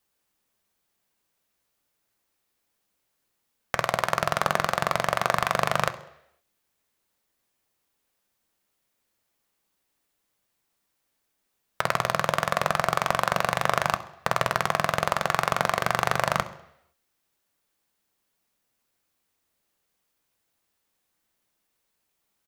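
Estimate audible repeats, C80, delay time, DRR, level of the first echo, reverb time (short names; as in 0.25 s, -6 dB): 1, 18.0 dB, 66 ms, 10.0 dB, -18.5 dB, 0.80 s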